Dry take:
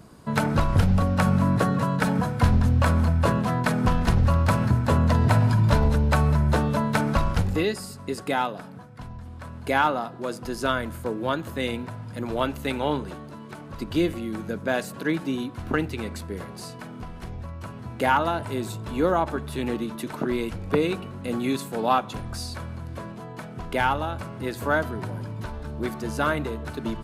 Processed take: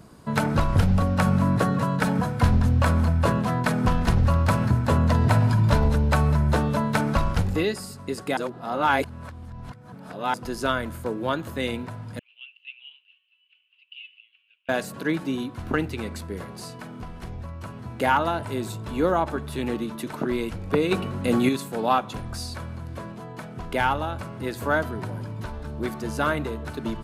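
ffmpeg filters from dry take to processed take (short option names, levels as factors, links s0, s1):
-filter_complex "[0:a]asettb=1/sr,asplit=3[s0][s1][s2];[s0]atrim=end=12.194[s3];[s1]atrim=start=12.19:end=14.69,asetpts=PTS-STARTPTS,afade=t=in:d=0.004:c=qsin,afade=t=out:st=2.496:d=0.004:c=qsin,asuperpass=centerf=2800:order=4:qfactor=6.8[s4];[s2]atrim=start=14.686[s5];[s3][s4]acrossfade=d=0.004:c1=hsin:c2=qsin[s6];[s6][s5]acrossfade=d=0.004:c1=qsin:c2=hsin,asettb=1/sr,asplit=3[s7][s8][s9];[s7]atrim=end=20.914[s10];[s8]atrim=start=20.91:end=21.49,asetpts=PTS-STARTPTS,afade=t=in:d=0.004:c=qsin,afade=t=out:st=0.576:d=0.004:c=qsin,acontrast=69[s11];[s9]atrim=start=21.486[s12];[s10][s11]acrossfade=d=0.004:c1=hsin:c2=qsin[s13];[s13][s12]acrossfade=d=0.004:c1=qsin:c2=hsin,asplit=3[s14][s15][s16];[s14]atrim=end=8.372[s17];[s15]atrim=start=8.368:end=10.342,asetpts=PTS-STARTPTS,areverse[s18];[s16]atrim=start=10.338[s19];[s17][s18]acrossfade=d=0.004:c1=hsin:c2=hsin[s20];[s20][s19]acrossfade=d=0.004:c1=hsin:c2=hsin"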